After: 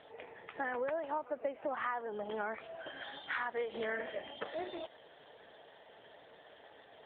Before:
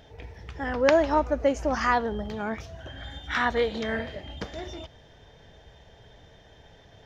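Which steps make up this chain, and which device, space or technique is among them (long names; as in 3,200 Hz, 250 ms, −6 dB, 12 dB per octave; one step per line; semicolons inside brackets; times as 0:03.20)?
voicemail (band-pass filter 420–3,200 Hz; downward compressor 10 to 1, threshold −34 dBFS, peak gain reduction 17.5 dB; level +1.5 dB; AMR narrowband 7.95 kbit/s 8,000 Hz)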